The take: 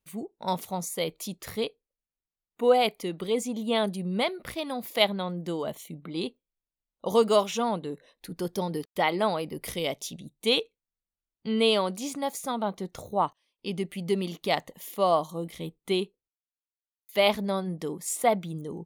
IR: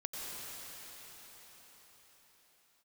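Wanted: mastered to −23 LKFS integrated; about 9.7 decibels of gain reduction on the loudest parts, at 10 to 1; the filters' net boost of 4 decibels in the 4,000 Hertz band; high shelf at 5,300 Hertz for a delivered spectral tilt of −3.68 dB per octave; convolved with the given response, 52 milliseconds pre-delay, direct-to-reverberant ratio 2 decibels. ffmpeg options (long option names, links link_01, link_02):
-filter_complex "[0:a]equalizer=frequency=4000:width_type=o:gain=4,highshelf=frequency=5300:gain=3.5,acompressor=threshold=-25dB:ratio=10,asplit=2[link_01][link_02];[1:a]atrim=start_sample=2205,adelay=52[link_03];[link_02][link_03]afir=irnorm=-1:irlink=0,volume=-4dB[link_04];[link_01][link_04]amix=inputs=2:normalize=0,volume=7.5dB"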